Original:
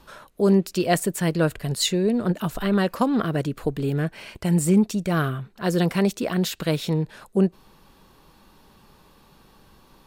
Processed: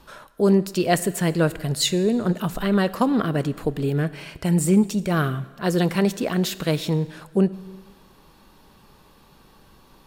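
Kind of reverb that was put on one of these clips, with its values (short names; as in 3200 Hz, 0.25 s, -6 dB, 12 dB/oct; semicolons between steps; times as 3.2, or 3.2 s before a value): plate-style reverb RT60 1.4 s, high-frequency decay 0.95×, DRR 15.5 dB; gain +1 dB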